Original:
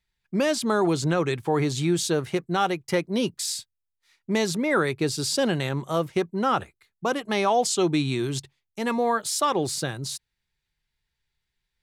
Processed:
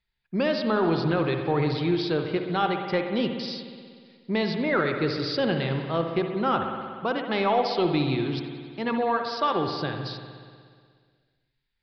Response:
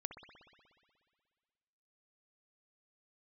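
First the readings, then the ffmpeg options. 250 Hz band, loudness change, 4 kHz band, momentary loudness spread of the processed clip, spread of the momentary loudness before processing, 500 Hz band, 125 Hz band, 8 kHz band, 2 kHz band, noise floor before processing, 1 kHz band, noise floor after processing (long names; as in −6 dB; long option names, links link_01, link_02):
−0.5 dB, −1.0 dB, −2.0 dB, 9 LU, 8 LU, −0.5 dB, −0.5 dB, below −25 dB, −0.5 dB, −81 dBFS, −0.5 dB, −77 dBFS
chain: -filter_complex "[0:a]aresample=11025,aresample=44100[link_01];[1:a]atrim=start_sample=2205[link_02];[link_01][link_02]afir=irnorm=-1:irlink=0,aeval=exprs='0.251*(cos(1*acos(clip(val(0)/0.251,-1,1)))-cos(1*PI/2))+0.002*(cos(4*acos(clip(val(0)/0.251,-1,1)))-cos(4*PI/2))':channel_layout=same,volume=2dB"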